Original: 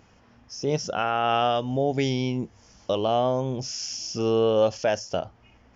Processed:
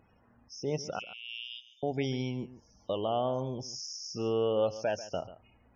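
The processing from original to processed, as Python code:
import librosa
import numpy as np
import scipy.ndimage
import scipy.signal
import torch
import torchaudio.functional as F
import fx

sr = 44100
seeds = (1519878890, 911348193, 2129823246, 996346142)

p1 = fx.steep_highpass(x, sr, hz=2300.0, slope=96, at=(0.99, 1.83))
p2 = fx.spec_topn(p1, sr, count=64)
p3 = p2 + fx.echo_single(p2, sr, ms=140, db=-15.5, dry=0)
y = p3 * 10.0 ** (-7.5 / 20.0)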